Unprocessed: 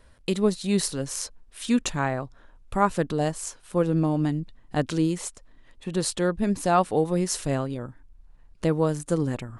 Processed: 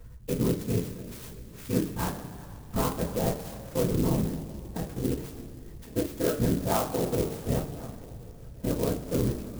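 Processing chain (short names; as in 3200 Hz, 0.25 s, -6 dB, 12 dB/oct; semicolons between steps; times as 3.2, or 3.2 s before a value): LPF 2700 Hz 6 dB/oct; low shelf 140 Hz +8.5 dB; notches 60/120/180/240/300 Hz; level quantiser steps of 24 dB; limiter -23.5 dBFS, peak gain reduction 10 dB; 4.21–5.03 compressor, threshold -35 dBFS, peak gain reduction 8 dB; whisperiser; thinning echo 1.081 s, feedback 46%, high-pass 530 Hz, level -21 dB; two-slope reverb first 0.28 s, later 2.8 s, from -18 dB, DRR -6.5 dB; clock jitter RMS 0.086 ms; gain -1.5 dB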